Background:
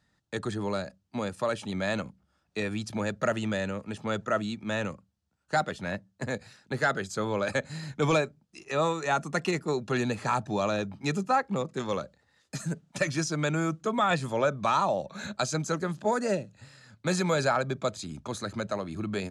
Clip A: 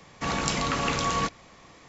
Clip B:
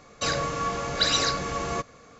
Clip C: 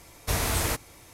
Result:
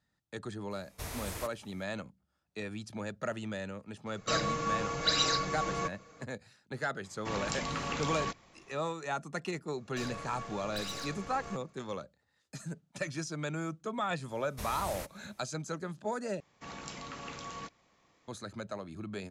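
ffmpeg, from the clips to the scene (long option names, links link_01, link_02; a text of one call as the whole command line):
ffmpeg -i bed.wav -i cue0.wav -i cue1.wav -i cue2.wav -filter_complex "[3:a]asplit=2[link_01][link_02];[2:a]asplit=2[link_03][link_04];[1:a]asplit=2[link_05][link_06];[0:a]volume=-8.5dB[link_07];[link_03]aecho=1:1:6.3:0.49[link_08];[link_04]aeval=exprs='(tanh(12.6*val(0)+0.65)-tanh(0.65))/12.6':channel_layout=same[link_09];[link_06]lowshelf=frequency=67:gain=-7[link_10];[link_07]asplit=2[link_11][link_12];[link_11]atrim=end=16.404[link_13];[link_10]atrim=end=1.88,asetpts=PTS-STARTPTS,volume=-16.5dB[link_14];[link_12]atrim=start=18.276[link_15];[link_01]atrim=end=1.13,asetpts=PTS-STARTPTS,volume=-14dB,afade=type=in:duration=0.004:curve=hsin,afade=type=out:start_time=1.126:duration=0.004:curve=hsin,adelay=710[link_16];[link_08]atrim=end=2.19,asetpts=PTS-STARTPTS,volume=-6.5dB,afade=type=in:duration=0.004:curve=hsin,afade=type=out:start_time=2.186:duration=0.004:curve=hsin,adelay=4060[link_17];[link_05]atrim=end=1.88,asetpts=PTS-STARTPTS,volume=-9dB,afade=type=in:duration=0.004:curve=hsin,afade=type=out:start_time=1.876:duration=0.004:curve=hsin,adelay=7040[link_18];[link_09]atrim=end=2.19,asetpts=PTS-STARTPTS,volume=-12dB,afade=type=in:duration=0.004:curve=hsin,afade=type=out:start_time=2.186:duration=0.004:curve=hsin,adelay=9750[link_19];[link_02]atrim=end=1.13,asetpts=PTS-STARTPTS,volume=-14.5dB,afade=type=in:duration=0.004:curve=hsin,afade=type=out:start_time=1.126:duration=0.004:curve=hsin,adelay=14300[link_20];[link_13][link_14]acrossfade=duration=0.004:curve1=hsin:curve2=hsin[link_21];[link_21][link_15]acrossfade=duration=0.004:curve1=hsin:curve2=hsin[link_22];[link_22][link_16][link_17][link_18][link_19][link_20]amix=inputs=6:normalize=0" out.wav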